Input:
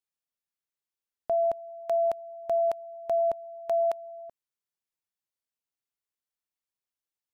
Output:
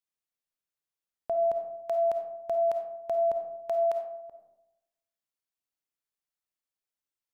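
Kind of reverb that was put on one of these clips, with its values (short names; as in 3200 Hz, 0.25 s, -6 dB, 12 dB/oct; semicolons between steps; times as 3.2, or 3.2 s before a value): digital reverb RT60 0.92 s, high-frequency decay 0.4×, pre-delay 10 ms, DRR 5 dB; gain -2.5 dB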